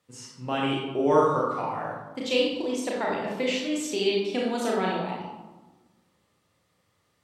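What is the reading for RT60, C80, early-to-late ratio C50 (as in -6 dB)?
1.2 s, 3.5 dB, 0.5 dB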